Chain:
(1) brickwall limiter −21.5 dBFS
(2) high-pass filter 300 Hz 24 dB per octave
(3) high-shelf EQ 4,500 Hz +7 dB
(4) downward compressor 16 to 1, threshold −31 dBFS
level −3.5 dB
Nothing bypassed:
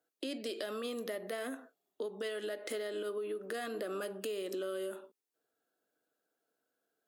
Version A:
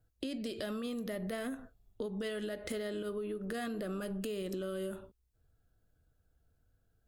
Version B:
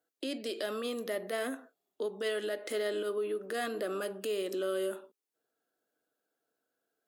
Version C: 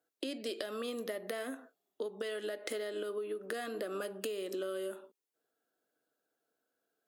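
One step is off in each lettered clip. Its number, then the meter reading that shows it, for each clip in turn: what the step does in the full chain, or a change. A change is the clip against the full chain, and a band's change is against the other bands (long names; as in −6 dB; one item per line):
2, 250 Hz band +7.0 dB
4, average gain reduction 3.5 dB
1, average gain reduction 1.5 dB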